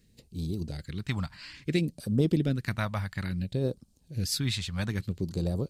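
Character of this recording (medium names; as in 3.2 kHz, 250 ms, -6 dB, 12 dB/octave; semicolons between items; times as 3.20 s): phasing stages 2, 0.59 Hz, lowest notch 360–1900 Hz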